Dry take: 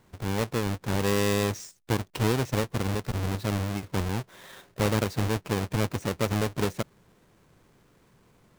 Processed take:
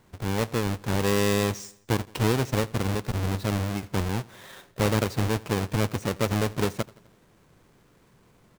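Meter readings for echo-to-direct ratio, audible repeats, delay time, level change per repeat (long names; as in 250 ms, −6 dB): −21.0 dB, 3, 84 ms, −5.5 dB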